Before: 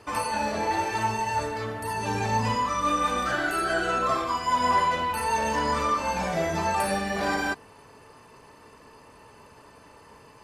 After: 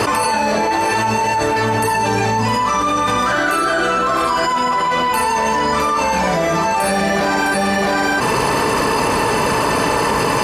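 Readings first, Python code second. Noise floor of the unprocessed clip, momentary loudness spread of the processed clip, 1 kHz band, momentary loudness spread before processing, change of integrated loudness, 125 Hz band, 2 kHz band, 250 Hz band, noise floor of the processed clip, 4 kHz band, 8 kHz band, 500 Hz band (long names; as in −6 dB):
−52 dBFS, 1 LU, +10.5 dB, 5 LU, +10.0 dB, +10.5 dB, +12.0 dB, +12.5 dB, −18 dBFS, +12.5 dB, +12.5 dB, +12.5 dB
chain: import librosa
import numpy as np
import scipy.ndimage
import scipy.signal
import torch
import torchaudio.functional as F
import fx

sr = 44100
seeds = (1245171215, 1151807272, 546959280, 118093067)

y = scipy.signal.sosfilt(scipy.signal.butter(2, 46.0, 'highpass', fs=sr, output='sos'), x)
y = fx.peak_eq(y, sr, hz=84.0, db=-11.5, octaves=0.39)
y = y + 10.0 ** (-9.0 / 20.0) * np.pad(y, (int(660 * sr / 1000.0), 0))[:len(y)]
y = fx.env_flatten(y, sr, amount_pct=100)
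y = F.gain(torch.from_numpy(y), 2.5).numpy()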